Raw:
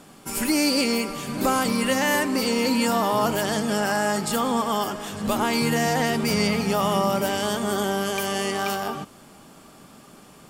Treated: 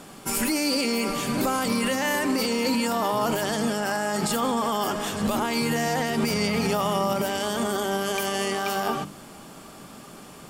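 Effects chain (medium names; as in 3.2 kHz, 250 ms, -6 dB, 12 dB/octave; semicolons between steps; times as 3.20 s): hum notches 50/100/150/200/250/300 Hz; peak limiter -20 dBFS, peak gain reduction 9 dB; trim +4.5 dB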